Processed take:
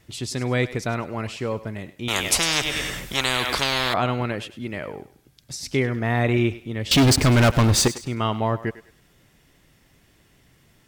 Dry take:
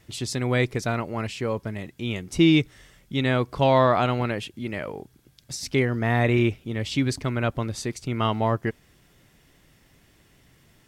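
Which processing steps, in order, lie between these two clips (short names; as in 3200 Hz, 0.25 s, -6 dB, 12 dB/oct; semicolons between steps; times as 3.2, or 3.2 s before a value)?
6.91–7.88 sample leveller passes 5; thinning echo 0.101 s, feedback 34%, high-pass 420 Hz, level -14.5 dB; 2.08–3.94 spectral compressor 10:1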